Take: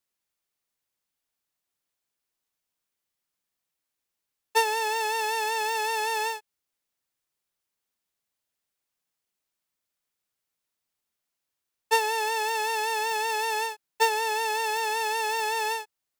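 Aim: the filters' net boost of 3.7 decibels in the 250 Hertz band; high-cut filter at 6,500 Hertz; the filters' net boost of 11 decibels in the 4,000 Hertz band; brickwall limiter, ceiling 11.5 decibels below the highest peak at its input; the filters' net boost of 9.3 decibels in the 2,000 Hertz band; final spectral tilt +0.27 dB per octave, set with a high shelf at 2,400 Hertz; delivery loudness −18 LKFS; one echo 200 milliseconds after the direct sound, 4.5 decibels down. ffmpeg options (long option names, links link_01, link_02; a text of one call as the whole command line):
ffmpeg -i in.wav -af "lowpass=6500,equalizer=frequency=250:width_type=o:gain=6.5,equalizer=frequency=2000:width_type=o:gain=6.5,highshelf=frequency=2400:gain=6,equalizer=frequency=4000:width_type=o:gain=7,alimiter=limit=-13dB:level=0:latency=1,aecho=1:1:200:0.596,volume=4dB" out.wav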